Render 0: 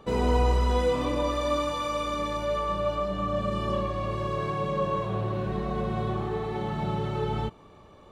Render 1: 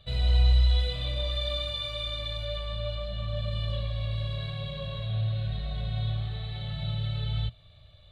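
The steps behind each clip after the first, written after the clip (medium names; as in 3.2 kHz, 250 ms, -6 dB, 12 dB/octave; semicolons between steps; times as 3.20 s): FFT filter 120 Hz 0 dB, 240 Hz -26 dB, 400 Hz -30 dB, 640 Hz -9 dB, 940 Hz -29 dB, 1.4 kHz -14 dB, 2.7 kHz -5 dB, 3.9 kHz +8 dB, 5.6 kHz -20 dB, 8.6 kHz -12 dB; trim +4 dB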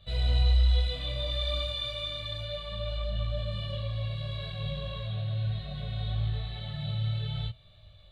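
detune thickener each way 22 cents; trim +2.5 dB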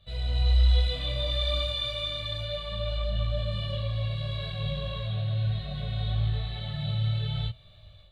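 level rider gain up to 7 dB; trim -4 dB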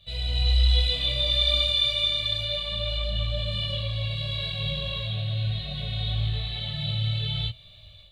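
resonant high shelf 2 kHz +7 dB, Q 1.5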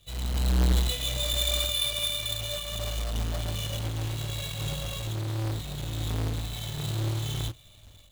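square wave that keeps the level; trim -7.5 dB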